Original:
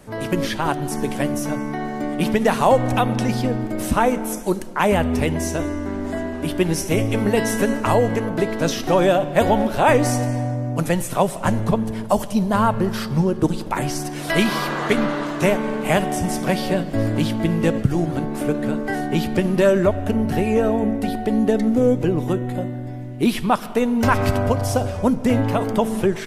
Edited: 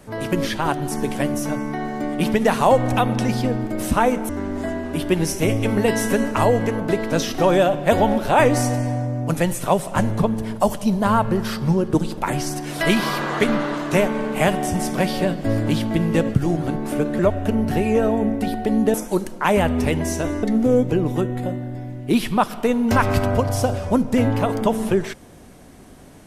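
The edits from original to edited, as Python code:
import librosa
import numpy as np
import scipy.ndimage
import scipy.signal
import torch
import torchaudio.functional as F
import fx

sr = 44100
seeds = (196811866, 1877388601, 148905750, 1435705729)

y = fx.edit(x, sr, fx.move(start_s=4.29, length_s=1.49, to_s=21.55),
    fx.cut(start_s=18.68, length_s=1.12), tone=tone)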